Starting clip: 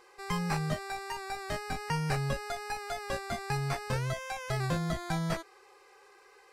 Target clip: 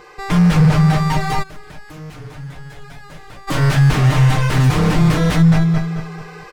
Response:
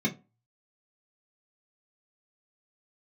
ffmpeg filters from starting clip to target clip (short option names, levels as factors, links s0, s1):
-filter_complex "[0:a]equalizer=f=10000:t=o:w=0.46:g=-9,aecho=1:1:220|440|660|880|1100:0.501|0.19|0.0724|0.0275|0.0105,dynaudnorm=f=640:g=3:m=1.58,aeval=exprs='0.126*sin(PI/2*3.98*val(0)/0.126)':c=same,aecho=1:1:6.6:0.57,asplit=3[s0][s1][s2];[s0]afade=t=out:st=1.42:d=0.02[s3];[s1]acompressor=threshold=0.00562:ratio=3,afade=t=in:st=1.42:d=0.02,afade=t=out:st=3.47:d=0.02[s4];[s2]afade=t=in:st=3.47:d=0.02[s5];[s3][s4][s5]amix=inputs=3:normalize=0,bass=f=250:g=12,treble=f=4000:g=-4,volume=0.891"